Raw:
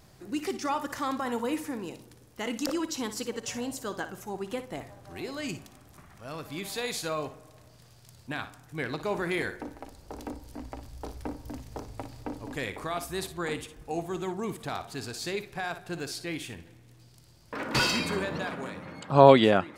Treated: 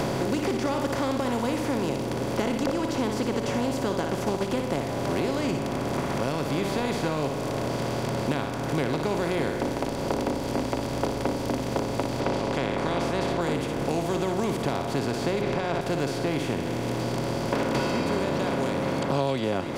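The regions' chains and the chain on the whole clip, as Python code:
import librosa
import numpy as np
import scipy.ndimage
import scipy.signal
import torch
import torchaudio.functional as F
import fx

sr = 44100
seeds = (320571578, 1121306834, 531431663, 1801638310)

y = fx.chain(x, sr, fx.transient(attack_db=5, sustain_db=-2),
    fx.doppler_dist(depth_ms=0.35), at=(4.07, 4.5))
y = fx.spec_clip(y, sr, under_db=16, at=(12.19, 13.4), fade=0.02)
y = fx.lowpass(y, sr, hz=3800.0, slope=12, at=(12.19, 13.4), fade=0.02)
y = fx.sustainer(y, sr, db_per_s=50.0, at=(12.19, 13.4), fade=0.02)
y = fx.chain(y, sr, fx.lowpass(hz=3000.0, slope=12),
    fx.env_flatten(amount_pct=70), at=(15.41, 15.81))
y = fx.bin_compress(y, sr, power=0.4)
y = fx.low_shelf(y, sr, hz=470.0, db=8.0)
y = fx.band_squash(y, sr, depth_pct=100)
y = y * 10.0 ** (-9.0 / 20.0)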